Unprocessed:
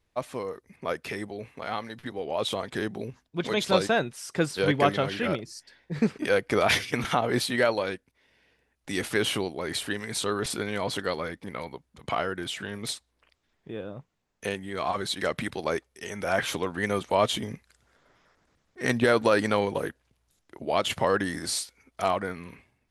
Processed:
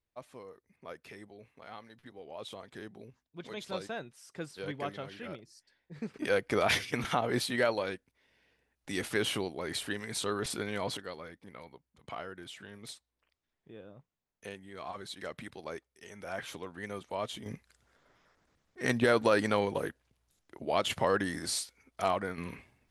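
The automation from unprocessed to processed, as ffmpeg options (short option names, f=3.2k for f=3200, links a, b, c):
-af "asetnsamples=n=441:p=0,asendcmd='6.14 volume volume -5dB;10.97 volume volume -13dB;17.46 volume volume -4dB;22.38 volume volume 2.5dB',volume=-15dB"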